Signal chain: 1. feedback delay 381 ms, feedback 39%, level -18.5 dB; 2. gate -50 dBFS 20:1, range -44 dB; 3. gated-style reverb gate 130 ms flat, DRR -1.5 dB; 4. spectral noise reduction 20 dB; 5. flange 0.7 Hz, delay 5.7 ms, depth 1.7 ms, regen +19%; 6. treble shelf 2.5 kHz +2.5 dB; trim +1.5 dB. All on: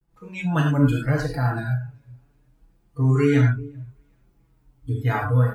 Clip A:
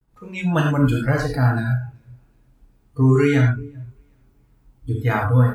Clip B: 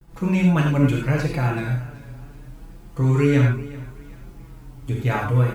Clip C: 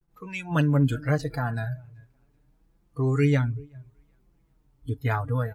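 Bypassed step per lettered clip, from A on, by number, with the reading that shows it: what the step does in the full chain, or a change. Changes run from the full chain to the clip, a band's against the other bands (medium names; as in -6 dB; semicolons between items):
5, loudness change +2.5 LU; 4, loudness change +1.5 LU; 3, momentary loudness spread change -5 LU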